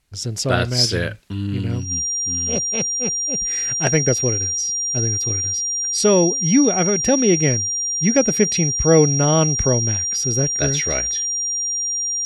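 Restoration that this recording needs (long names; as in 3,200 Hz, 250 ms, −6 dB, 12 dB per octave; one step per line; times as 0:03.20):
notch filter 5,700 Hz, Q 30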